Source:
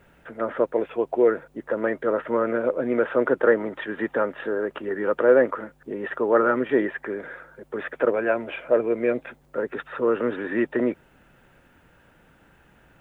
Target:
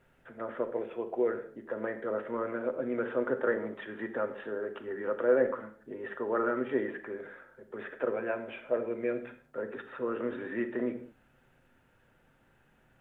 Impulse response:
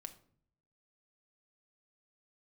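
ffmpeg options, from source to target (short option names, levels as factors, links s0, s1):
-filter_complex "[1:a]atrim=start_sample=2205,afade=t=out:st=0.2:d=0.01,atrim=end_sample=9261,asetrate=31311,aresample=44100[s0];[0:a][s0]afir=irnorm=-1:irlink=0,volume=0.473"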